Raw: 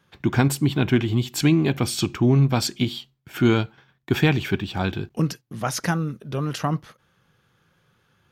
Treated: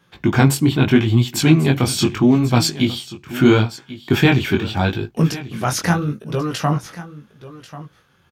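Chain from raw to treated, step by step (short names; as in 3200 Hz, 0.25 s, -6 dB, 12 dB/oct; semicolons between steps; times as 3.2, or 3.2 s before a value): chorus 0.78 Hz, delay 17 ms, depth 6.9 ms; echo 1.09 s -16 dB; gain +8.5 dB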